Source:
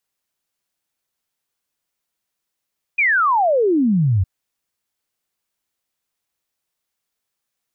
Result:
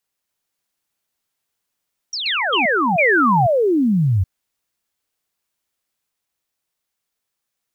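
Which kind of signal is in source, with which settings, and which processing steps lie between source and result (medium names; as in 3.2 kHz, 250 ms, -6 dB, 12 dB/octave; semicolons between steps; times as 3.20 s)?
log sweep 2.5 kHz -> 87 Hz 1.26 s -13 dBFS
block-companded coder 7-bit; ever faster or slower copies 292 ms, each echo +5 st, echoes 3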